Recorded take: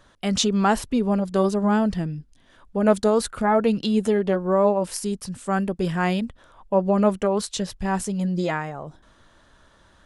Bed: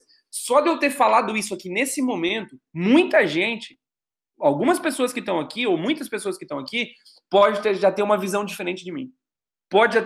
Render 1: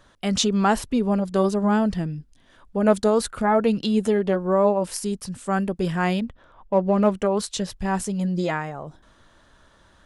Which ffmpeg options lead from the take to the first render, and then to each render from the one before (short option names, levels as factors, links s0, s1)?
-filter_complex "[0:a]asettb=1/sr,asplit=3[s0][s1][s2];[s0]atrim=end=6.194[s3];[s1]atrim=start=6.19:end=7.15,asetpts=PTS-STARTPTS,afade=t=in:d=0.004:c=qsin,afade=t=out:st=0.956:d=0.004:c=qsin,adynamicsmooth=sensitivity=8:basefreq=3700[s4];[s2]atrim=start=7.146[s5];[s3][s4]acrossfade=d=0.004:c1=hsin:c2=qsin[s6];[s6][s5]acrossfade=d=0.004:c1=qsin:c2=hsin"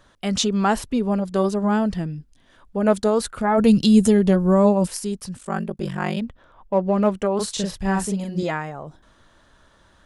-filter_complex "[0:a]asplit=3[s0][s1][s2];[s0]afade=t=out:st=3.57:d=0.02[s3];[s1]bass=f=250:g=13,treble=f=4000:g=13,afade=t=in:st=3.57:d=0.02,afade=t=out:st=4.86:d=0.02[s4];[s2]afade=t=in:st=4.86:d=0.02[s5];[s3][s4][s5]amix=inputs=3:normalize=0,asettb=1/sr,asplit=3[s6][s7][s8];[s6]atrim=end=5.374[s9];[s7]atrim=start=5.37:end=6.17,asetpts=PTS-STARTPTS,afade=t=in:d=0.004:c=qsin,afade=t=out:st=0.796:d=0.004:c=qsin,aeval=exprs='val(0)*sin(2*PI*24*n/s)':c=same[s10];[s8]atrim=start=6.166[s11];[s9][s10]acrossfade=d=0.004:c1=hsin:c2=qsin[s12];[s12][s11]acrossfade=d=0.004:c1=qsin:c2=hsin,asettb=1/sr,asplit=3[s13][s14][s15];[s13]atrim=end=7.354[s16];[s14]atrim=start=7.35:end=8.43,asetpts=PTS-STARTPTS,afade=t=in:d=0.004:c=qsin,afade=t=out:st=1.076:d=0.004:c=qsin,asplit=2[s17][s18];[s18]adelay=41,volume=0.794[s19];[s17][s19]amix=inputs=2:normalize=0,atrim=end_sample=47628[s20];[s15]atrim=start=8.426[s21];[s16][s20]acrossfade=d=0.004:c1=hsin:c2=qsin[s22];[s22][s21]acrossfade=d=0.004:c1=qsin:c2=hsin"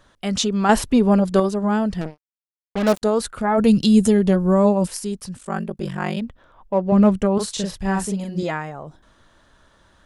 -filter_complex "[0:a]asettb=1/sr,asplit=3[s0][s1][s2];[s0]atrim=end=0.694[s3];[s1]atrim=start=0.69:end=1.4,asetpts=PTS-STARTPTS,afade=t=in:d=0.004:c=qsin,afade=t=out:st=0.706:d=0.004:c=qsin,acontrast=69[s4];[s2]atrim=start=1.396[s5];[s3][s4]acrossfade=d=0.004:c1=hsin:c2=qsin[s6];[s6][s5]acrossfade=d=0.004:c1=qsin:c2=hsin,asettb=1/sr,asplit=3[s7][s8][s9];[s7]atrim=end=2.014[s10];[s8]atrim=start=2.01:end=3.02,asetpts=PTS-STARTPTS,afade=t=in:d=0.004:c=qsin,afade=t=out:st=1.006:d=0.004:c=qsin,acrusher=bits=3:mix=0:aa=0.5[s11];[s9]atrim=start=3.016[s12];[s10][s11]acrossfade=d=0.004:c1=hsin:c2=qsin[s13];[s13][s12]acrossfade=d=0.004:c1=qsin:c2=hsin,asettb=1/sr,asplit=3[s14][s15][s16];[s14]atrim=end=6.924[s17];[s15]atrim=start=6.92:end=7.38,asetpts=PTS-STARTPTS,afade=t=in:d=0.004:c=qsin,afade=t=out:st=0.456:d=0.004:c=qsin,bass=f=250:g=11,treble=f=4000:g=2[s18];[s16]atrim=start=7.376[s19];[s17][s18]acrossfade=d=0.004:c1=hsin:c2=qsin[s20];[s20][s19]acrossfade=d=0.004:c1=qsin:c2=hsin"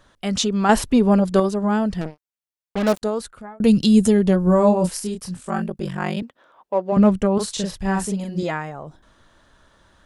-filter_complex "[0:a]asettb=1/sr,asplit=3[s0][s1][s2];[s0]atrim=end=4.444[s3];[s1]atrim=start=4.44:end=5.68,asetpts=PTS-STARTPTS,afade=t=in:d=0.004:c=qsin,afade=t=out:st=1.236:d=0.004:c=qsin,asplit=2[s4][s5];[s5]adelay=28,volume=0.562[s6];[s4][s6]amix=inputs=2:normalize=0,atrim=end_sample=54684[s7];[s2]atrim=start=5.676[s8];[s3][s7]acrossfade=d=0.004:c1=hsin:c2=qsin[s9];[s9][s8]acrossfade=d=0.004:c1=qsin:c2=hsin,asettb=1/sr,asplit=3[s10][s11][s12];[s10]atrim=end=6.224[s13];[s11]atrim=start=6.22:end=6.97,asetpts=PTS-STARTPTS,afade=t=in:d=0.004:c=qsin,afade=t=out:st=0.746:d=0.004:c=qsin,highpass=340[s14];[s12]atrim=start=6.966[s15];[s13][s14]acrossfade=d=0.004:c1=hsin:c2=qsin[s16];[s16][s15]acrossfade=d=0.004:c1=qsin:c2=hsin,asplit=2[s17][s18];[s17]atrim=end=3.6,asetpts=PTS-STARTPTS,afade=t=out:st=2.79:d=0.81[s19];[s18]atrim=start=3.6,asetpts=PTS-STARTPTS,afade=t=in:d=0.004:c=hsin[s20];[s19][s20]concat=n=2:v=0:a=1"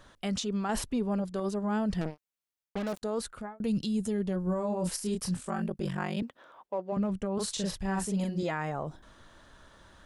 -af "areverse,acompressor=threshold=0.0562:ratio=12,areverse,alimiter=limit=0.075:level=0:latency=1:release=151"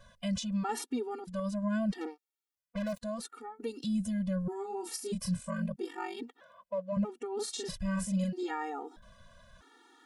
-af "afftfilt=real='re*gt(sin(2*PI*0.78*pts/sr)*(1-2*mod(floor(b*sr/1024/240),2)),0)':imag='im*gt(sin(2*PI*0.78*pts/sr)*(1-2*mod(floor(b*sr/1024/240),2)),0)':win_size=1024:overlap=0.75"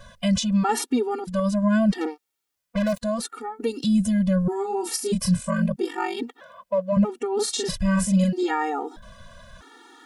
-af "volume=3.76"